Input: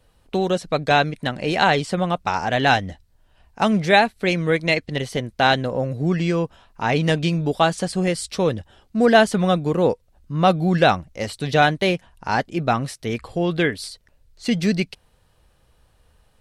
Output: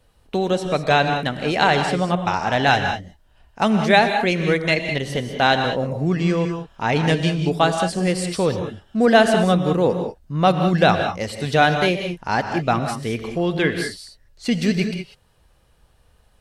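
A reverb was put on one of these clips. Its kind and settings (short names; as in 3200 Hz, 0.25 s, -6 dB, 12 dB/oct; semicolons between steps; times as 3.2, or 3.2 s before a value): non-linear reverb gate 0.22 s rising, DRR 6 dB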